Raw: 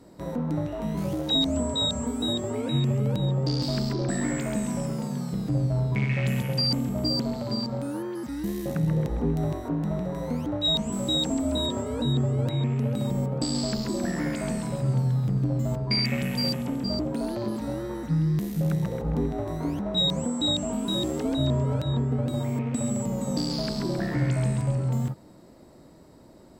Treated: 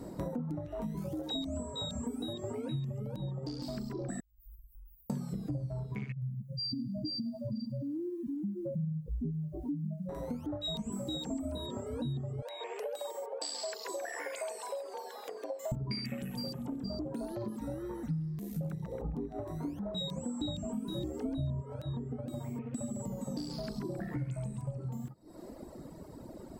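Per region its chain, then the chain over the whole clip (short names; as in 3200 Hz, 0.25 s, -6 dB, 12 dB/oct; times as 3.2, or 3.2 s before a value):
4.2–5.1 inverse Chebyshev band-stop 230–4900 Hz, stop band 80 dB + compressor 3:1, threshold -55 dBFS
6.12–10.09 spectral contrast raised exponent 3.6 + lo-fi delay 0.101 s, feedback 35%, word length 9-bit, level -13 dB
12.42–15.72 elliptic high-pass 450 Hz, stop band 70 dB + bell 2500 Hz +4.5 dB 2.7 oct + notch 1300 Hz, Q 5.8
20.41–21.62 low shelf 260 Hz +8.5 dB + notches 50/100/150/200 Hz
whole clip: bell 3200 Hz -7.5 dB 2.6 oct; compressor 4:1, threshold -43 dBFS; reverb removal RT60 1.8 s; gain +8 dB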